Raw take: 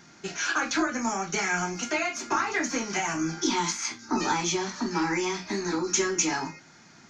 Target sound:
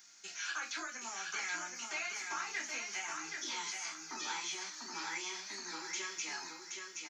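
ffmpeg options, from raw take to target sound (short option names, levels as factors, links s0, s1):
-filter_complex "[0:a]aderivative,acrossover=split=3600[s0][s1];[s1]acompressor=threshold=0.00398:ratio=4:attack=1:release=60[s2];[s0][s2]amix=inputs=2:normalize=0,aecho=1:1:774|1548|2322|3096:0.596|0.173|0.0501|0.0145,volume=1.12"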